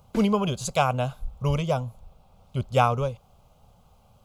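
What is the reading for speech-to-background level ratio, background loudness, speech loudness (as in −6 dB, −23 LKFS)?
14.5 dB, −40.5 LKFS, −26.0 LKFS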